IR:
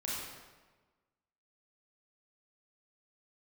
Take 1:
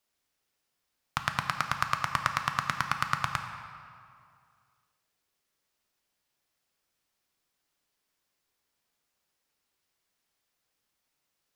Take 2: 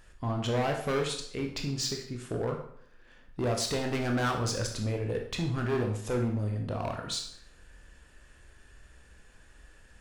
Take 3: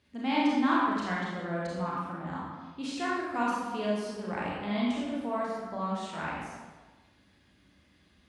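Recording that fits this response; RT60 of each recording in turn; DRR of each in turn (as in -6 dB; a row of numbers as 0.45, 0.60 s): 3; 2.3, 0.65, 1.3 s; 5.0, 2.0, -6.0 dB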